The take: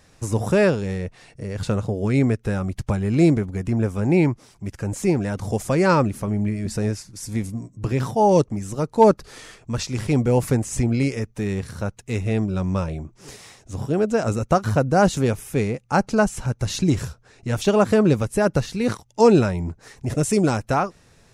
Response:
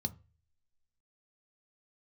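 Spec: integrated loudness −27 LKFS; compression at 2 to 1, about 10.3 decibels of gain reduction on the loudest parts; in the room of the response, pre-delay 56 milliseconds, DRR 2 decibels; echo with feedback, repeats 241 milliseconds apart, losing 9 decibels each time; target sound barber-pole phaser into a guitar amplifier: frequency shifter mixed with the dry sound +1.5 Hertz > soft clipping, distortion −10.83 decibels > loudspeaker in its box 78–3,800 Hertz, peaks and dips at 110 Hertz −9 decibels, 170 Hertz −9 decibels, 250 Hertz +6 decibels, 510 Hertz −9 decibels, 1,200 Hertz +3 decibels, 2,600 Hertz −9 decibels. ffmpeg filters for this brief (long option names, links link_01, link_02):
-filter_complex "[0:a]acompressor=threshold=-28dB:ratio=2,aecho=1:1:241|482|723|964:0.355|0.124|0.0435|0.0152,asplit=2[link_01][link_02];[1:a]atrim=start_sample=2205,adelay=56[link_03];[link_02][link_03]afir=irnorm=-1:irlink=0,volume=-2dB[link_04];[link_01][link_04]amix=inputs=2:normalize=0,asplit=2[link_05][link_06];[link_06]afreqshift=1.5[link_07];[link_05][link_07]amix=inputs=2:normalize=1,asoftclip=threshold=-20.5dB,highpass=78,equalizer=frequency=110:width_type=q:width=4:gain=-9,equalizer=frequency=170:width_type=q:width=4:gain=-9,equalizer=frequency=250:width_type=q:width=4:gain=6,equalizer=frequency=510:width_type=q:width=4:gain=-9,equalizer=frequency=1200:width_type=q:width=4:gain=3,equalizer=frequency=2600:width_type=q:width=4:gain=-9,lowpass=frequency=3800:width=0.5412,lowpass=frequency=3800:width=1.3066,volume=3dB"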